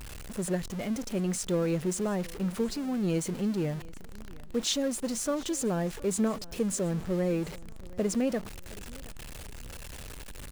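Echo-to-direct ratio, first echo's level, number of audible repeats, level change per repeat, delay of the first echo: −21.5 dB, −22.0 dB, 2, −8.5 dB, 720 ms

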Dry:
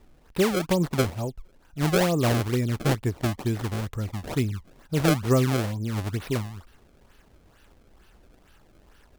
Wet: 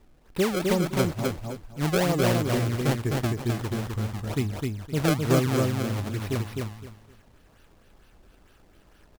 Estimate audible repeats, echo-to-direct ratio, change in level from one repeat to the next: 3, −3.0 dB, −13.0 dB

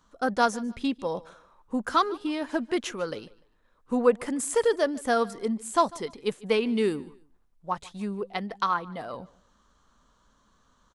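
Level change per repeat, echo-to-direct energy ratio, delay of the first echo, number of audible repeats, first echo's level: −11.0 dB, −21.5 dB, 148 ms, 2, −22.0 dB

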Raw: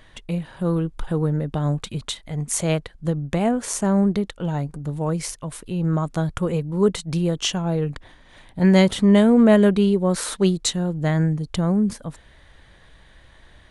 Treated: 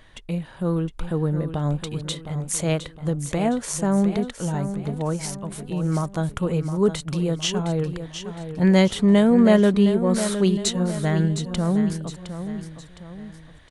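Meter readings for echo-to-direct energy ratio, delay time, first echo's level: −9.0 dB, 712 ms, −10.0 dB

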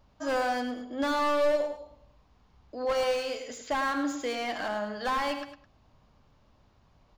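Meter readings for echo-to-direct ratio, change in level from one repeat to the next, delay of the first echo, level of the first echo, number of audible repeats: −9.5 dB, −9.0 dB, 105 ms, −10.0 dB, 2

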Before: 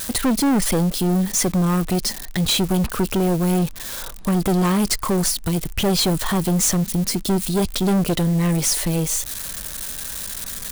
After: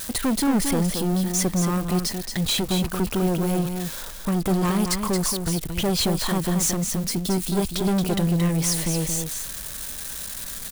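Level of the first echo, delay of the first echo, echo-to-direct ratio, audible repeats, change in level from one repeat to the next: −6.5 dB, 225 ms, −6.5 dB, 1, repeats not evenly spaced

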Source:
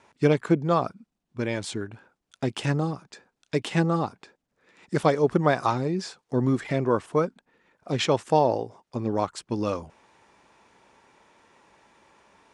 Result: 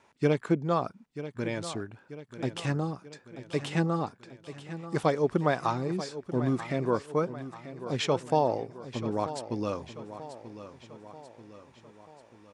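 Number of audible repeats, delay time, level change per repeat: 4, 937 ms, −5.5 dB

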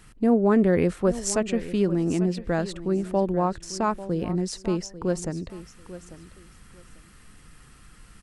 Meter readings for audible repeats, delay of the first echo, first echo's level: 2, 844 ms, −15.0 dB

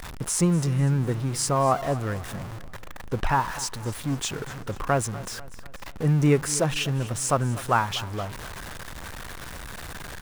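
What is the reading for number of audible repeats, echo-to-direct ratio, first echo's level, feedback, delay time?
3, −17.0 dB, −18.0 dB, 48%, 245 ms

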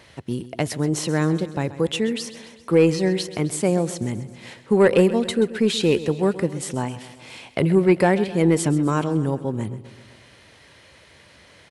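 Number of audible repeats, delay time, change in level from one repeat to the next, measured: 5, 131 ms, −4.5 dB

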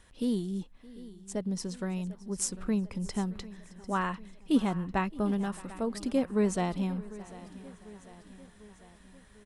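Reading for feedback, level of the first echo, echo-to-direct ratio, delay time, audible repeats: repeats not evenly spaced, −21.5 dB, −15.0 dB, 618 ms, 6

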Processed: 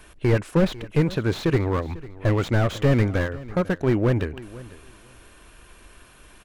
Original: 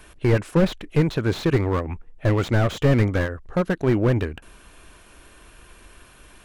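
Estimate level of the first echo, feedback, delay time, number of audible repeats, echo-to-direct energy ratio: −19.0 dB, 19%, 497 ms, 2, −19.0 dB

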